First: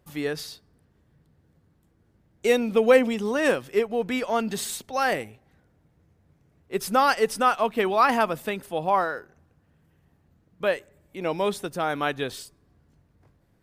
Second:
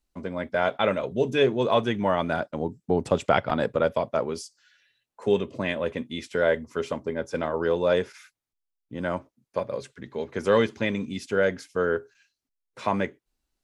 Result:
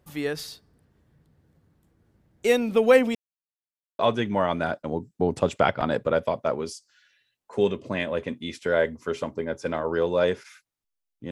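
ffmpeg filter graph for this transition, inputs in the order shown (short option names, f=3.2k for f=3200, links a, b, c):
-filter_complex "[0:a]apad=whole_dur=11.31,atrim=end=11.31,asplit=2[a][b];[a]atrim=end=3.15,asetpts=PTS-STARTPTS,afade=t=out:st=3.146:d=0.004:c=hsin[c];[b]atrim=start=3.15:end=3.99,asetpts=PTS-STARTPTS,volume=0[d];[1:a]atrim=start=1.68:end=9,asetpts=PTS-STARTPTS,afade=t=in:d=0.004:c=hsin[e];[c][d][e]concat=n=3:v=0:a=1"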